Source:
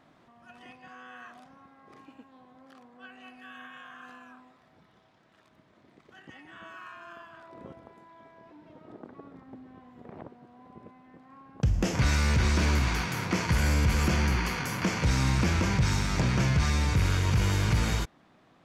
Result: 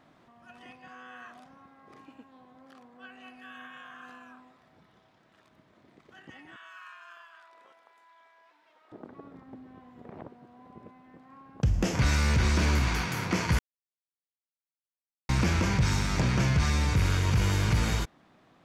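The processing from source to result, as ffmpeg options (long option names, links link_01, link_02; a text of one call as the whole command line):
ffmpeg -i in.wav -filter_complex "[0:a]asettb=1/sr,asplit=3[link_01][link_02][link_03];[link_01]atrim=end=6.564[link_04];[link_02]atrim=start=6.56:end=8.92,asetpts=PTS-STARTPTS,afade=type=in:duration=0.004:curve=qsin,afade=type=out:start_time=2.356:duration=0.004:curve=qsin,highpass=1200[link_05];[link_03]atrim=start=8.916[link_06];[link_04][link_05]acrossfade=duration=0.004:curve1=hsin:curve2=qsin[link_07];[link_07][link_06]acrossfade=duration=0.004:curve1=qsin:curve2=hsin,asplit=3[link_08][link_09][link_10];[link_08]atrim=end=13.59,asetpts=PTS-STARTPTS,afade=type=out:start_time=13.586:duration=0.004:curve=hsin[link_11];[link_09]atrim=start=13.59:end=15.29,asetpts=PTS-STARTPTS,volume=0[link_12];[link_10]atrim=start=15.29,asetpts=PTS-STARTPTS,afade=type=in:duration=0.004:curve=hsin[link_13];[link_11][link_12][link_13]concat=n=3:v=0:a=1" out.wav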